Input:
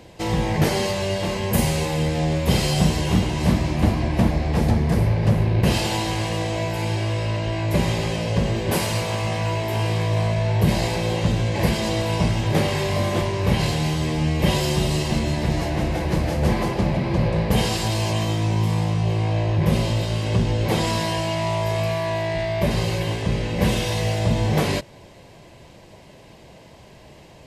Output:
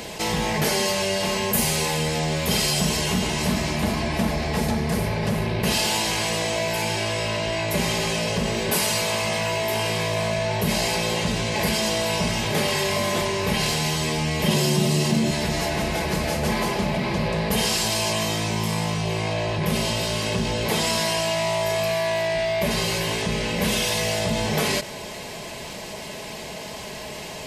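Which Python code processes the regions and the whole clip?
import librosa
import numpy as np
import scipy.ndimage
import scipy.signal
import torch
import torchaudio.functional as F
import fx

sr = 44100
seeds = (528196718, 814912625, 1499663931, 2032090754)

y = fx.chain(x, sr, fx.highpass(hz=110.0, slope=24),
    fx.peak_eq(hz=160.0, db=10.5, octaves=2.9), at=(14.47, 15.31))
y = fx.tilt_eq(y, sr, slope=2.0)
y = y + 0.42 * np.pad(y, (int(4.7 * sr / 1000.0), 0))[:len(y)]
y = fx.env_flatten(y, sr, amount_pct=50)
y = F.gain(torch.from_numpy(y), -5.0).numpy()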